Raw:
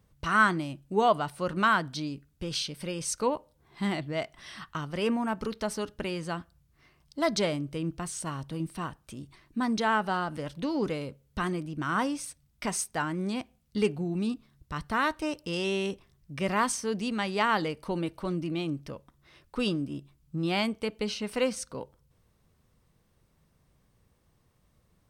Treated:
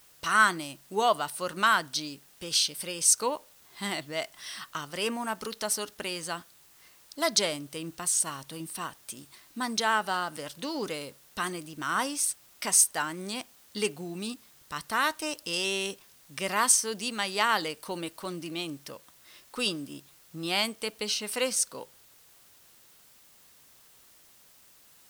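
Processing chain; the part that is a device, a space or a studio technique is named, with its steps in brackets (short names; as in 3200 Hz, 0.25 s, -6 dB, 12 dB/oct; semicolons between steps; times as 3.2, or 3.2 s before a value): turntable without a phono preamp (RIAA curve recording; white noise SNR 27 dB); bell 2300 Hz -2.5 dB 0.2 oct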